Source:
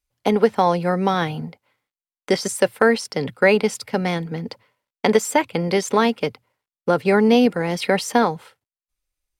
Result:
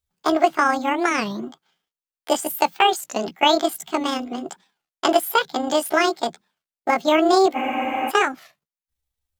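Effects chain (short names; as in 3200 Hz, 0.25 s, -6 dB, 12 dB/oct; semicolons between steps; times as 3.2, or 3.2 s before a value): delay-line pitch shifter +7.5 st; spectral freeze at 7.56, 0.54 s; record warp 33 1/3 rpm, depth 250 cents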